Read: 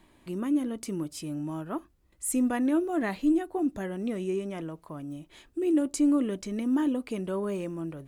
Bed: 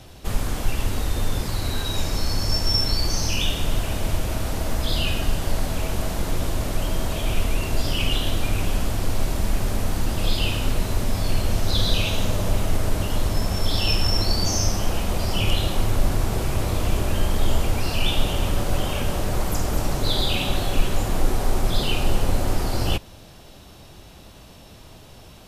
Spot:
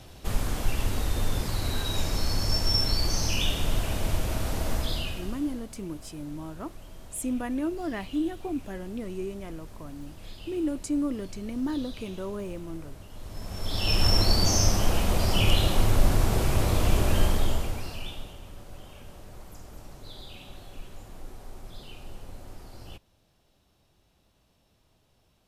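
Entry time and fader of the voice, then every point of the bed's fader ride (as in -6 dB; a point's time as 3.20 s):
4.90 s, -4.0 dB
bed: 4.76 s -3.5 dB
5.69 s -22 dB
13.11 s -22 dB
14.05 s -0.5 dB
17.24 s -0.5 dB
18.41 s -22 dB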